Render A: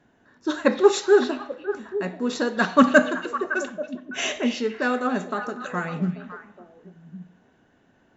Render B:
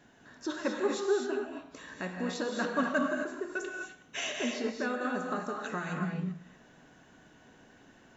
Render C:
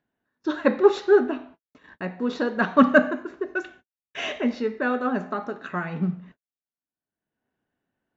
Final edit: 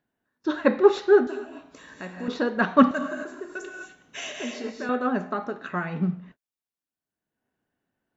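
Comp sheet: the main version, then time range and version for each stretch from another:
C
1.27–2.28 s: from B
2.91–4.89 s: from B
not used: A

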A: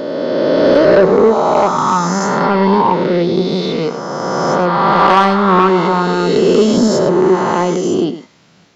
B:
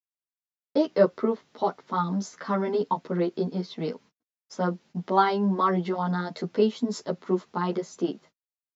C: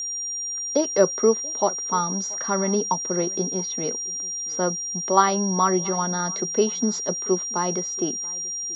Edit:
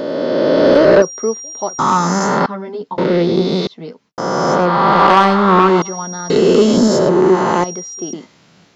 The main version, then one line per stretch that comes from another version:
A
1.02–1.79 s: from C
2.46–2.98 s: from B
3.67–4.18 s: from B
5.82–6.30 s: from C
7.64–8.13 s: from C

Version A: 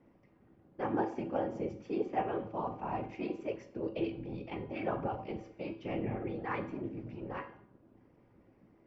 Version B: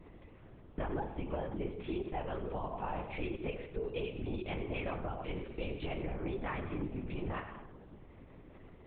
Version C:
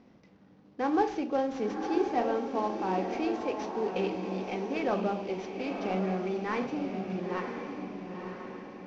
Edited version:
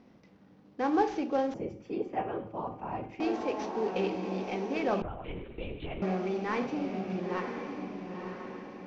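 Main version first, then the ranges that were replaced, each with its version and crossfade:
C
1.54–3.20 s: from A
5.02–6.02 s: from B

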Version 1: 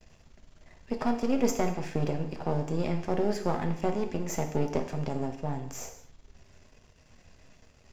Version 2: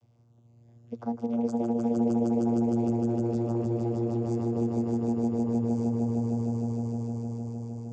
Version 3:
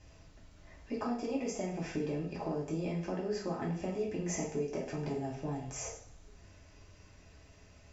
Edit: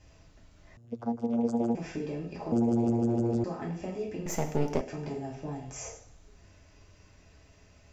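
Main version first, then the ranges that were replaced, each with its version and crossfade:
3
0.77–1.75 s: from 2
2.52–3.44 s: from 2
4.26–4.81 s: from 1

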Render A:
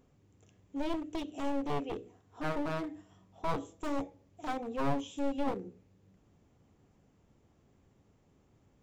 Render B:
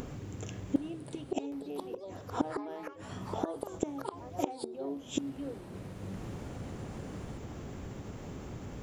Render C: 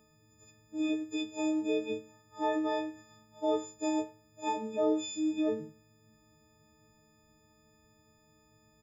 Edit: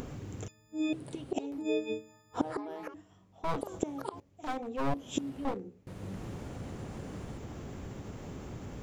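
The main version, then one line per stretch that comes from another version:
B
0.48–0.93 s: from C
1.60–2.36 s: from C, crossfade 0.06 s
2.94–3.61 s: from A
4.20–4.94 s: from A
5.45–5.87 s: from A

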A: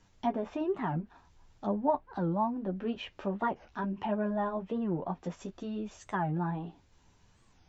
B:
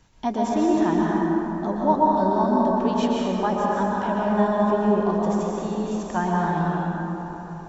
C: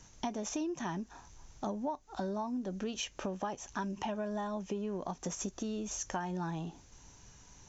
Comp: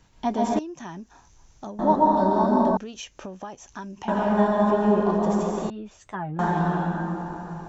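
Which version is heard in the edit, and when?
B
0.59–1.79 s: from C
2.77–4.08 s: from C
5.70–6.39 s: from A

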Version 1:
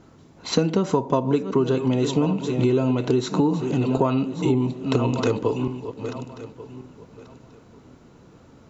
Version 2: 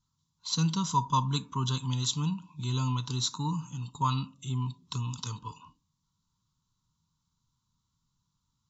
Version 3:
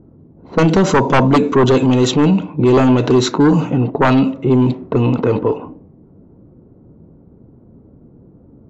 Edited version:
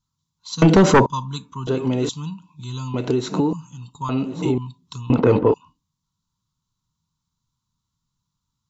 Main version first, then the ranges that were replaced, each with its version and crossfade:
2
0.62–1.06 s: from 3
1.67–2.09 s: from 1
2.94–3.53 s: from 1
4.09–4.58 s: from 1
5.10–5.54 s: from 3

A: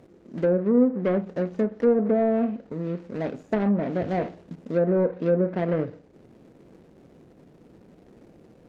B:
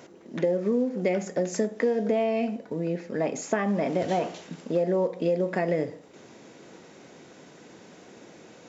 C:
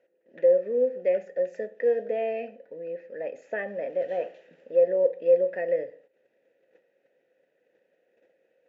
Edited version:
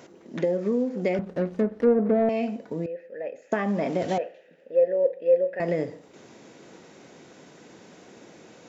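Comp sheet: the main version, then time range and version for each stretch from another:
B
1.19–2.29 s: from A
2.86–3.52 s: from C
4.18–5.60 s: from C

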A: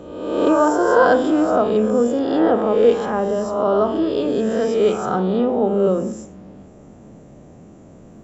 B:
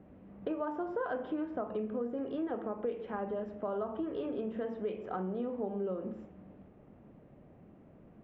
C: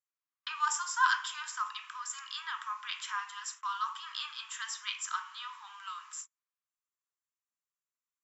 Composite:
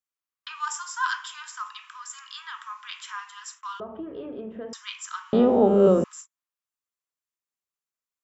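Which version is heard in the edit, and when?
C
3.80–4.73 s: from B
5.33–6.04 s: from A

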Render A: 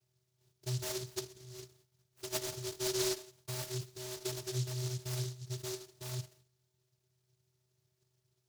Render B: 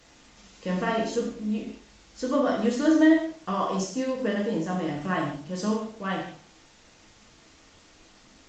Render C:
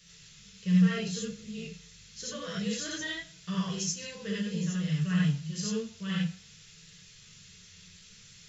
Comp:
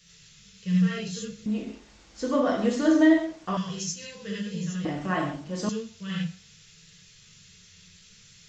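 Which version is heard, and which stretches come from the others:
C
1.46–3.57 s: from B
4.85–5.69 s: from B
not used: A

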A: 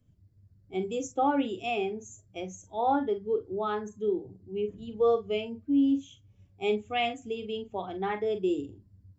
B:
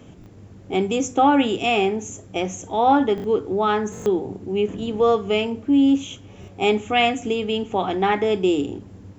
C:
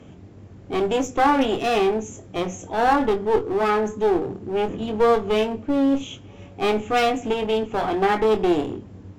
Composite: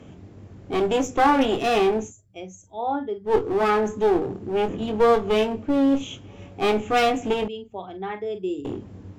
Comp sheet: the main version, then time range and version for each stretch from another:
C
2.08–3.29 s: from A, crossfade 0.10 s
7.48–8.65 s: from A
not used: B

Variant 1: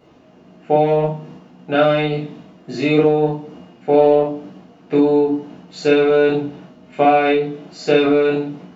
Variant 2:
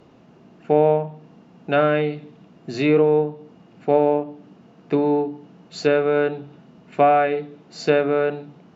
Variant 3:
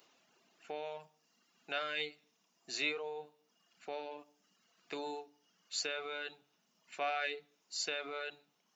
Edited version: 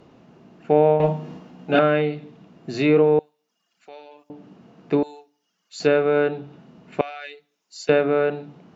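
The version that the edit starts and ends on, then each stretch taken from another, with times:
2
1.00–1.79 s: from 1
3.19–4.30 s: from 3
5.03–5.80 s: from 3
7.01–7.89 s: from 3

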